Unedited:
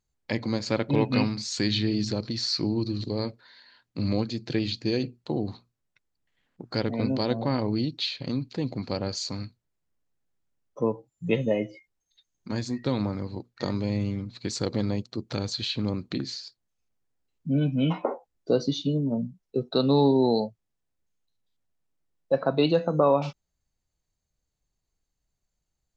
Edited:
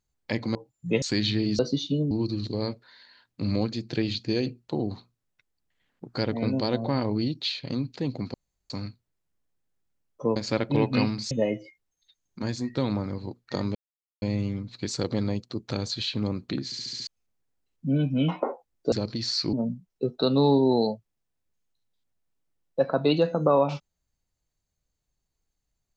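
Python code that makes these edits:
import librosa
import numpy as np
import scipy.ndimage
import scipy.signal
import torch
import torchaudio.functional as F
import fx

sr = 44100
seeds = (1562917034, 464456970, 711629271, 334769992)

y = fx.edit(x, sr, fx.swap(start_s=0.55, length_s=0.95, other_s=10.93, other_length_s=0.47),
    fx.swap(start_s=2.07, length_s=0.61, other_s=18.54, other_length_s=0.52),
    fx.room_tone_fill(start_s=8.91, length_s=0.36),
    fx.insert_silence(at_s=13.84, length_s=0.47),
    fx.stutter_over(start_s=16.27, slice_s=0.07, count=6), tone=tone)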